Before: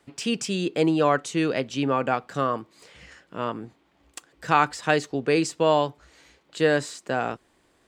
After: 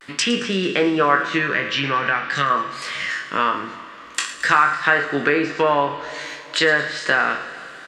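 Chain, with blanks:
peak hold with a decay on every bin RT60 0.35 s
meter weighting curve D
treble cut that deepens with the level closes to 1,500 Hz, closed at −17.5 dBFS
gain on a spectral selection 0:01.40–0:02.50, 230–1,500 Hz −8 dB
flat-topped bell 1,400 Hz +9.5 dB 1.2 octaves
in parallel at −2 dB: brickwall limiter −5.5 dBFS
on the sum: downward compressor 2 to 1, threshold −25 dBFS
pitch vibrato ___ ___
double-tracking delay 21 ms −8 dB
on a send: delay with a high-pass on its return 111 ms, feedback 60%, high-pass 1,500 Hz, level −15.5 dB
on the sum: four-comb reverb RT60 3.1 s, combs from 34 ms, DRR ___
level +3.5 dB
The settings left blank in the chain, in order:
0.47 Hz, 47 cents, 12.5 dB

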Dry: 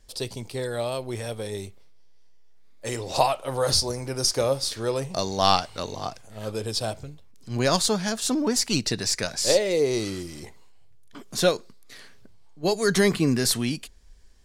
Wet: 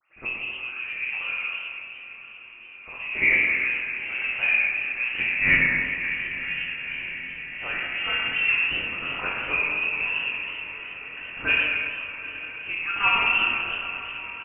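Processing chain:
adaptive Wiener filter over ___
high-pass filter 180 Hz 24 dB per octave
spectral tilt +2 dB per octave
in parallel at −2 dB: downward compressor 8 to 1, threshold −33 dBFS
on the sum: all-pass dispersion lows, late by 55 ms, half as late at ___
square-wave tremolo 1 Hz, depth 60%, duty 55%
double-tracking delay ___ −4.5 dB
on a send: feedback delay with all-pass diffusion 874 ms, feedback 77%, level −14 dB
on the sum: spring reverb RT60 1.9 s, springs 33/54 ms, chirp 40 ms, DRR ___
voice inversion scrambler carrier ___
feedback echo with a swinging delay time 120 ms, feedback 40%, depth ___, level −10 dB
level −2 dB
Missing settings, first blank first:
15 samples, 920 Hz, 23 ms, −1.5 dB, 3,000 Hz, 160 cents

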